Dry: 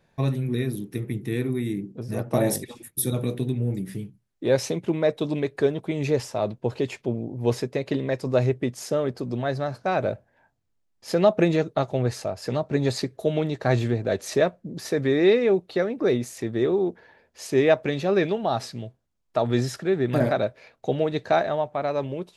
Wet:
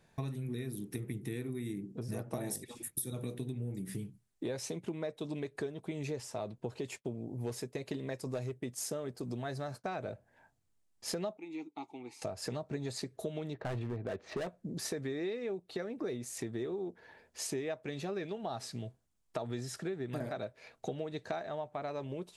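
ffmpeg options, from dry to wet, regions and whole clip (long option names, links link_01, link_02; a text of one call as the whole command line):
ffmpeg -i in.wav -filter_complex "[0:a]asettb=1/sr,asplit=3[link_01][link_02][link_03];[link_01]atrim=end=6.844[link_04];[link_02]atrim=start=6.84:end=9.84,asetpts=PTS-STARTPTS,afade=type=in:duration=0.004:curve=qsin,afade=type=out:start_time=2.996:duration=0.004:curve=qsin,highshelf=frequency=9500:gain=10.5,agate=range=-33dB:threshold=-39dB:ratio=3:release=100:detection=peak,volume=13.5dB,asoftclip=hard,volume=-13.5dB[link_05];[link_03]atrim=start=9.836[link_06];[link_04][link_05]acrossfade=duration=0.004:curve1=hsin:curve2=qsin[link_07];[link_07][link_06]acrossfade=duration=0.004:curve1=qsin:curve2=hsin,asettb=1/sr,asplit=3[link_08][link_09][link_10];[link_08]atrim=end=11.374[link_11];[link_09]atrim=start=11.37:end=12.22,asetpts=PTS-STARTPTS,afade=type=in:duration=0.004:curve=qsin,afade=type=out:start_time=0.846:duration=0.004:curve=qsin,asplit=3[link_12][link_13][link_14];[link_12]bandpass=frequency=300:width_type=q:width=8,volume=0dB[link_15];[link_13]bandpass=frequency=870:width_type=q:width=8,volume=-6dB[link_16];[link_14]bandpass=frequency=2240:width_type=q:width=8,volume=-9dB[link_17];[link_15][link_16][link_17]amix=inputs=3:normalize=0,aemphasis=mode=production:type=riaa,bandreject=frequency=980:width=29[link_18];[link_10]atrim=start=12.216[link_19];[link_11][link_18]acrossfade=duration=0.004:curve1=hsin:curve2=qsin[link_20];[link_20][link_19]acrossfade=duration=0.004:curve1=qsin:curve2=hsin,asettb=1/sr,asplit=3[link_21][link_22][link_23];[link_21]atrim=end=13.534[link_24];[link_22]atrim=start=13.53:end=14.47,asetpts=PTS-STARTPTS,afade=type=in:duration=0.004:curve=qsin,afade=type=out:start_time=0.936:duration=0.004:curve=qsin,lowpass=3800,adynamicsmooth=sensitivity=2.5:basefreq=2700,volume=20.5dB,asoftclip=hard,volume=-20.5dB[link_25];[link_23]atrim=start=14.466[link_26];[link_24][link_25]acrossfade=duration=0.004:curve1=hsin:curve2=qsin[link_27];[link_27][link_26]acrossfade=duration=0.004:curve1=qsin:curve2=hsin,equalizer=frequency=8700:width=1.1:gain=7.5,bandreject=frequency=550:width=14,acompressor=threshold=-34dB:ratio=6,volume=-2dB" out.wav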